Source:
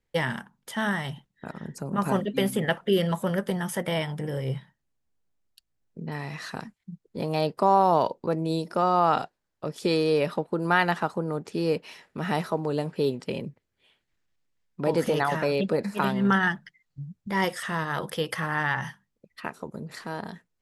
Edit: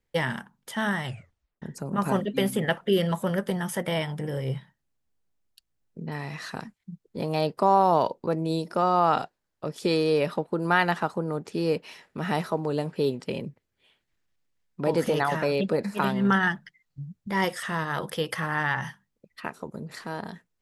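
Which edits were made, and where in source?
0:01.05: tape stop 0.57 s

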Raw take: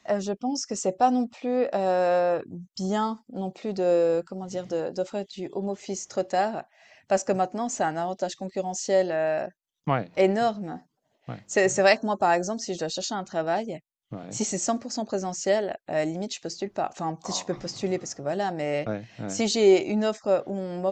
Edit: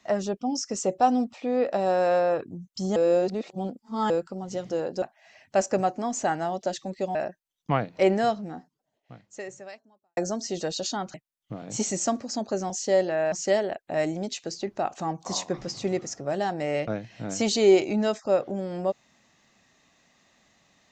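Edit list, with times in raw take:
0:02.96–0:04.10: reverse
0:05.02–0:06.58: remove
0:08.71–0:09.33: move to 0:15.31
0:10.45–0:12.35: fade out quadratic
0:13.32–0:13.75: remove

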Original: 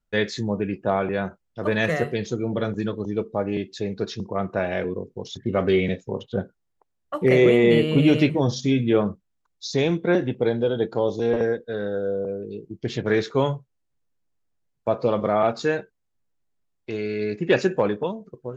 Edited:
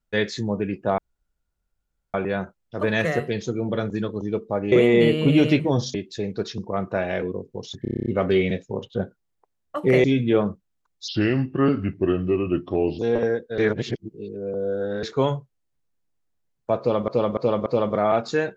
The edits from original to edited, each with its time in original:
0:00.98: splice in room tone 1.16 s
0:05.44: stutter 0.03 s, 9 plays
0:07.42–0:08.64: move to 0:03.56
0:09.68–0:11.17: play speed 78%
0:11.76–0:13.21: reverse
0:14.97–0:15.26: repeat, 4 plays

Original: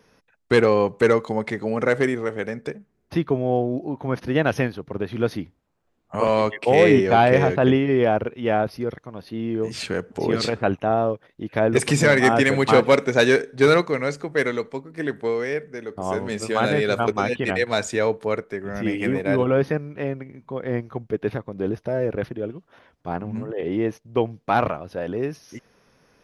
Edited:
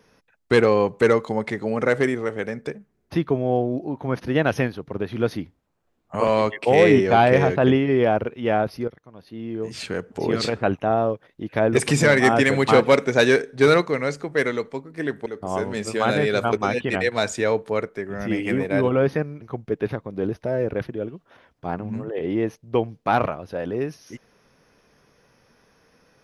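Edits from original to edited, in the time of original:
0:08.88–0:10.87: fade in equal-power, from −13.5 dB
0:15.26–0:15.81: remove
0:19.97–0:20.84: remove

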